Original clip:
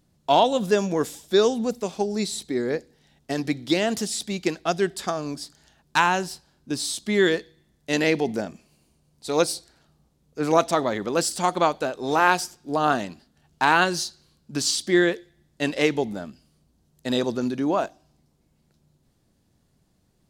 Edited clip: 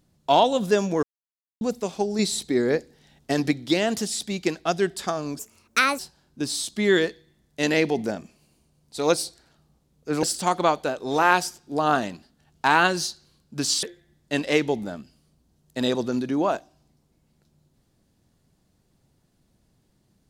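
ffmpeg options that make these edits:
-filter_complex "[0:a]asplit=9[a][b][c][d][e][f][g][h][i];[a]atrim=end=1.03,asetpts=PTS-STARTPTS,afade=t=out:st=1.026:d=0.004:c=hsin[j];[b]atrim=start=1.03:end=1.61,asetpts=PTS-STARTPTS,volume=0[k];[c]atrim=start=1.61:end=2.192,asetpts=PTS-STARTPTS,afade=t=in:d=0.004:c=hsin[l];[d]atrim=start=2.188:end=3.512,asetpts=PTS-STARTPTS,volume=3.5dB[m];[e]atrim=start=3.508:end=5.394[n];[f]atrim=start=5.39:end=6.29,asetpts=PTS-STARTPTS,asetrate=66150,aresample=44100[o];[g]atrim=start=6.286:end=10.532[p];[h]atrim=start=11.198:end=14.802[q];[i]atrim=start=15.118[r];[j][k][l]concat=n=3:v=0:a=1[s];[s][m]acrossfade=d=0.004:c1=hsin:c2=hsin[t];[t][n]acrossfade=d=0.004:c1=hsin:c2=hsin[u];[u][o]acrossfade=d=0.004:c1=hsin:c2=hsin[v];[v][p]acrossfade=d=0.004:c1=hsin:c2=hsin[w];[w][q]acrossfade=d=0.004:c1=hsin:c2=hsin[x];[x][r]acrossfade=d=0.004:c1=hsin:c2=hsin"

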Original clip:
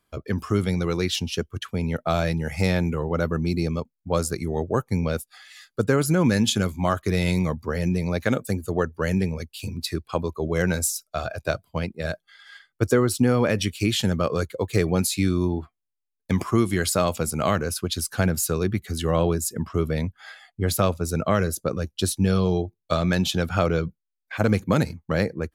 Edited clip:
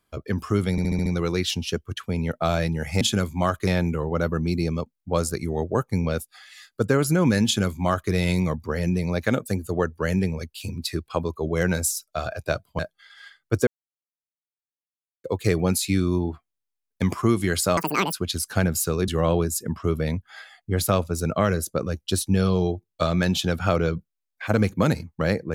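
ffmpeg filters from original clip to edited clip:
-filter_complex "[0:a]asplit=14[a][b][c][d][e][f][g][h][i][j][k][l][m][n];[a]atrim=end=0.782[o];[b]atrim=start=0.708:end=0.782[p];[c]atrim=start=0.708:end=0.782[q];[d]atrim=start=0.708:end=0.782[r];[e]atrim=start=0.708:end=0.782[s];[f]atrim=start=0.708:end=2.662[t];[g]atrim=start=6.438:end=7.102[u];[h]atrim=start=2.658:end=11.782[v];[i]atrim=start=12.078:end=12.96,asetpts=PTS-STARTPTS,afade=t=out:st=0.878:d=0.004:c=hsin[w];[j]atrim=start=12.96:end=14.53,asetpts=PTS-STARTPTS,volume=0[x];[k]atrim=start=14.53:end=17.064,asetpts=PTS-STARTPTS,afade=t=in:d=0.004:c=hsin[y];[l]atrim=start=17.06:end=17.75,asetpts=PTS-STARTPTS,asetrate=85113,aresample=44100,atrim=end_sample=15766,asetpts=PTS-STARTPTS[z];[m]atrim=start=17.746:end=18.702[aa];[n]atrim=start=18.978[ab];[o][p]acrossfade=d=0.004:c1=hsin:c2=hsin[ac];[ac][q]acrossfade=d=0.004:c1=hsin:c2=hsin[ad];[ad][r]acrossfade=d=0.004:c1=hsin:c2=hsin[ae];[ae][s]acrossfade=d=0.004:c1=hsin:c2=hsin[af];[af][t]acrossfade=d=0.004:c1=hsin:c2=hsin[ag];[ag][u]acrossfade=d=0.004:c1=hsin:c2=hsin[ah];[ah][v]acrossfade=d=0.004:c1=hsin:c2=hsin[ai];[w][x][y]concat=n=3:v=0:a=1[aj];[ai][aj]acrossfade=d=0.004:c1=hsin:c2=hsin[ak];[ak][z]acrossfade=d=0.004:c1=hsin:c2=hsin[al];[al][aa]acrossfade=d=0.004:c1=hsin:c2=hsin[am];[am][ab]acrossfade=d=0.004:c1=hsin:c2=hsin"

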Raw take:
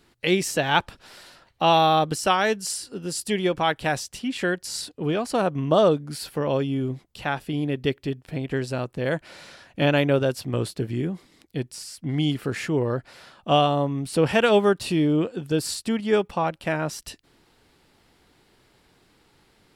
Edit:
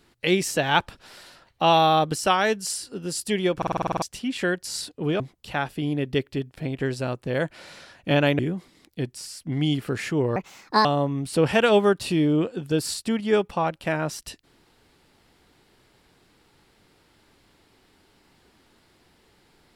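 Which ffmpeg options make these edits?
-filter_complex "[0:a]asplit=14[a][b][c][d][e][f][g][h][i][j][k][l][m][n];[a]atrim=end=3.622[o];[b]atrim=start=3.568:end=3.622[p];[c]atrim=start=3.568:end=3.622[q];[d]atrim=start=3.568:end=3.622[r];[e]atrim=start=3.568:end=3.622[s];[f]atrim=start=3.568:end=3.622[t];[g]atrim=start=3.568:end=3.622[u];[h]atrim=start=3.568:end=3.622[v];[i]atrim=start=3.568:end=3.622[w];[j]atrim=start=4.018:end=5.202[x];[k]atrim=start=6.908:end=10.102[y];[l]atrim=start=10.958:end=12.934[z];[m]atrim=start=12.93:end=13.65,asetpts=PTS-STARTPTS,asetrate=64827,aresample=44100[aa];[n]atrim=start=13.646[ab];[o][p]acrossfade=d=0.004:c1=hsin:c2=hsin[ac];[ac][q]acrossfade=d=0.004:c1=hsin:c2=hsin[ad];[ad][r]acrossfade=d=0.004:c1=hsin:c2=hsin[ae];[ae][s]acrossfade=d=0.004:c1=hsin:c2=hsin[af];[af][t]acrossfade=d=0.004:c1=hsin:c2=hsin[ag];[ag][u]acrossfade=d=0.004:c1=hsin:c2=hsin[ah];[ah][v]acrossfade=d=0.004:c1=hsin:c2=hsin[ai];[ai][w]acrossfade=d=0.004:c1=hsin:c2=hsin[aj];[aj][x]acrossfade=d=0.004:c1=hsin:c2=hsin[ak];[ak][y]acrossfade=d=0.004:c1=hsin:c2=hsin[al];[al][z]acrossfade=d=0.004:c1=hsin:c2=hsin[am];[am][aa]acrossfade=d=0.004:c1=hsin:c2=hsin[an];[an][ab]acrossfade=d=0.004:c1=hsin:c2=hsin"

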